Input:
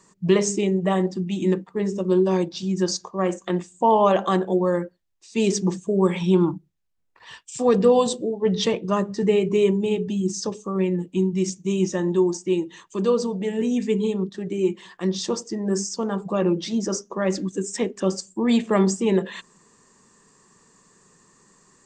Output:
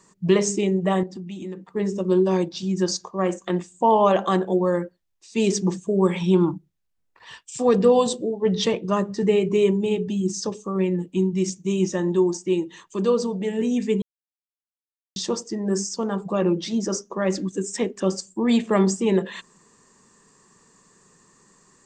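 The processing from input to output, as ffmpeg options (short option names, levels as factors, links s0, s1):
-filter_complex "[0:a]asettb=1/sr,asplit=3[s0][s1][s2];[s0]atrim=end=1.034[s3];[s1]atrim=start=1.03:end=1.7,asetpts=PTS-STARTPTS,afade=t=in:d=0.004:c=qsin,afade=t=out:st=0.666:d=0.004:c=qsin,acompressor=threshold=0.02:ratio=3:attack=3.2:release=140:knee=1:detection=peak[s4];[s2]atrim=start=1.696[s5];[s3][s4]acrossfade=d=0.004:c1=hsin:c2=qsin[s6];[s6][s5]acrossfade=d=0.004:c1=qsin:c2=hsin,asplit=3[s7][s8][s9];[s7]atrim=end=14.02,asetpts=PTS-STARTPTS,afade=t=out:st=14.016:d=0.004:c=hsin[s10];[s8]atrim=start=14.02:end=15.16,asetpts=PTS-STARTPTS,volume=0[s11];[s9]atrim=start=15.16,asetpts=PTS-STARTPTS,afade=t=in:d=0.004:c=hsin[s12];[s10][s11][s12]concat=n=3:v=0:a=1"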